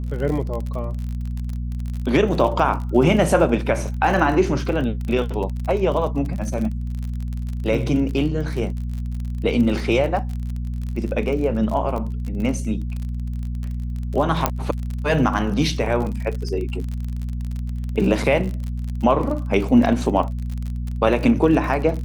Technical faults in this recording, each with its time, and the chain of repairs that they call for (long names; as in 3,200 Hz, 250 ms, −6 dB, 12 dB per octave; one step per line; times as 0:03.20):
surface crackle 41 per second −27 dBFS
mains hum 60 Hz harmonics 4 −26 dBFS
0:14.46: click −2 dBFS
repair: click removal
hum removal 60 Hz, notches 4